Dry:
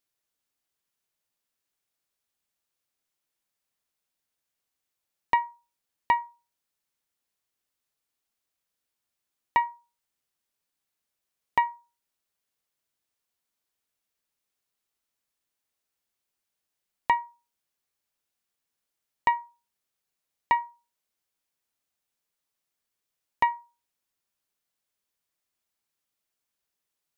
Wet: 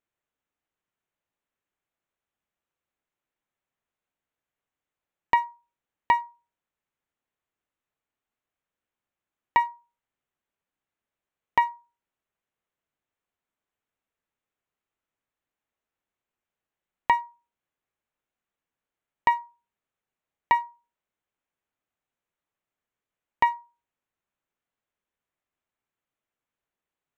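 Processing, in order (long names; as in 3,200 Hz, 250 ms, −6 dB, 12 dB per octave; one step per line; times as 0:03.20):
adaptive Wiener filter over 9 samples
level +2 dB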